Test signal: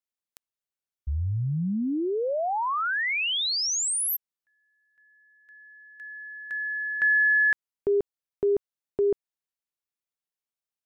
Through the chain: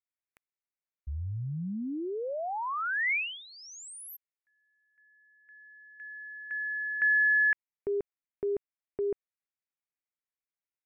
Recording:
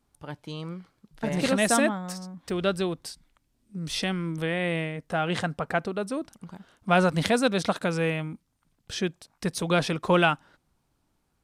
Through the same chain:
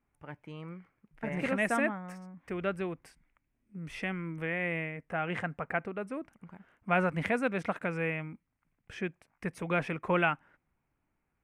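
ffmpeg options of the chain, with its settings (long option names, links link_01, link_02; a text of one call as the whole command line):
ffmpeg -i in.wav -af "highshelf=frequency=3000:width_type=q:width=3:gain=-10,volume=-7.5dB" out.wav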